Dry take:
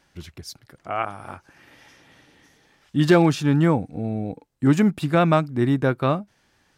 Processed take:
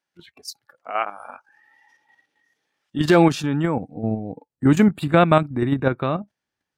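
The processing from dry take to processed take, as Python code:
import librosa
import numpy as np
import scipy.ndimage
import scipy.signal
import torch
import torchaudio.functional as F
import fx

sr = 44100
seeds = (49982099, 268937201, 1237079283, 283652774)

y = fx.highpass(x, sr, hz=fx.steps((0.0, 420.0), (2.99, 180.0), (4.02, 83.0)), slope=6)
y = fx.noise_reduce_blind(y, sr, reduce_db=18)
y = fx.level_steps(y, sr, step_db=9)
y = y * 10.0 ** (5.5 / 20.0)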